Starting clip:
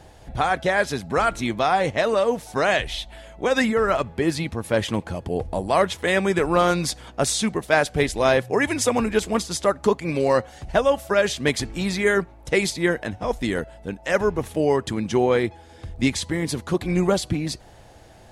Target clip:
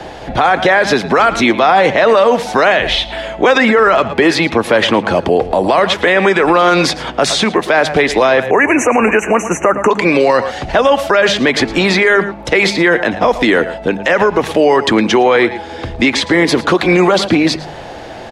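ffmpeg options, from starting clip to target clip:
-filter_complex "[0:a]acrossover=split=180 5100:gain=0.251 1 0.141[s0][s1][s2];[s0][s1][s2]amix=inputs=3:normalize=0,bandreject=f=50.89:t=h:w=4,bandreject=f=101.78:t=h:w=4,bandreject=f=152.67:t=h:w=4,bandreject=f=203.56:t=h:w=4,acrossover=split=280|710|2500[s3][s4][s5][s6];[s3]acompressor=threshold=0.00794:ratio=4[s7];[s4]acompressor=threshold=0.0355:ratio=4[s8];[s5]acompressor=threshold=0.0562:ratio=4[s9];[s6]acompressor=threshold=0.0112:ratio=4[s10];[s7][s8][s9][s10]amix=inputs=4:normalize=0,asettb=1/sr,asplit=3[s11][s12][s13];[s11]atrim=end=8.404[s14];[s12]atrim=start=8.4:end=9.91,asetpts=PTS-STARTPTS,afade=t=in:d=0.004:c=qsin,afade=t=out:st=1.506:d=0.004:c=qsin,asuperstop=centerf=4100:order=20:qfactor=1.4[s15];[s13]atrim=start=9.906[s16];[s14][s15]acrossfade=d=0.004:c1=hsin:c2=qsin[s17];[s17][s16]acrossfade=d=0.004:c1=qsin:c2=hsin,asplit=2[s18][s19];[s19]aecho=0:1:111:0.126[s20];[s18][s20]amix=inputs=2:normalize=0,alimiter=level_in=13.3:limit=0.891:release=50:level=0:latency=1,volume=0.891"

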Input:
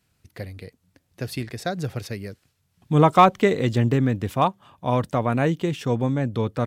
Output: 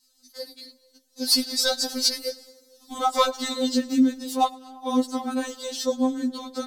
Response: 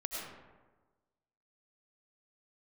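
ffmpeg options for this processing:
-filter_complex "[0:a]highshelf=f=3300:t=q:w=3:g=11,asplit=3[s0][s1][s2];[s0]afade=t=out:st=1.24:d=0.02[s3];[s1]acontrast=88,afade=t=in:st=1.24:d=0.02,afade=t=out:st=2.92:d=0.02[s4];[s2]afade=t=in:st=2.92:d=0.02[s5];[s3][s4][s5]amix=inputs=3:normalize=0,aphaser=in_gain=1:out_gain=1:delay=4.6:decay=0.57:speed=2:type=triangular,asplit=2[s6][s7];[1:a]atrim=start_sample=2205,adelay=106[s8];[s7][s8]afir=irnorm=-1:irlink=0,volume=0.0891[s9];[s6][s9]amix=inputs=2:normalize=0,afftfilt=real='re*3.46*eq(mod(b,12),0)':imag='im*3.46*eq(mod(b,12),0)':win_size=2048:overlap=0.75,volume=0.708"

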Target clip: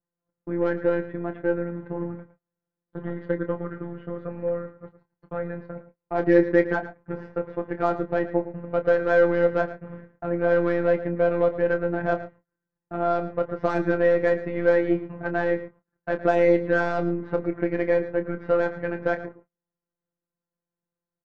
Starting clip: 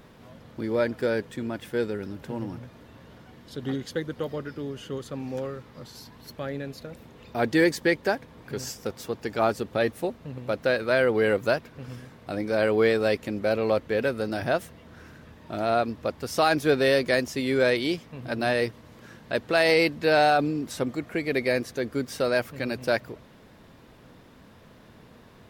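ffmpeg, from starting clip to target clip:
-filter_complex "[0:a]agate=range=0.00794:threshold=0.00891:ratio=16:detection=peak,lowpass=f=1700:w=0.5412,lowpass=f=1700:w=1.3066,asplit=2[s0][s1];[s1]alimiter=limit=0.141:level=0:latency=1:release=49,volume=1[s2];[s0][s2]amix=inputs=2:normalize=0,aeval=exprs='0.473*(cos(1*acos(clip(val(0)/0.473,-1,1)))-cos(1*PI/2))+0.0106*(cos(8*acos(clip(val(0)/0.473,-1,1)))-cos(8*PI/2))':c=same,afftfilt=real='hypot(re,im)*cos(PI*b)':imag='0':win_size=1024:overlap=0.75,atempo=1.2,asplit=2[s3][s4];[s4]adelay=27,volume=0.335[s5];[s3][s5]amix=inputs=2:normalize=0,asplit=2[s6][s7];[s7]adelay=110.8,volume=0.2,highshelf=f=4000:g=-2.49[s8];[s6][s8]amix=inputs=2:normalize=0"

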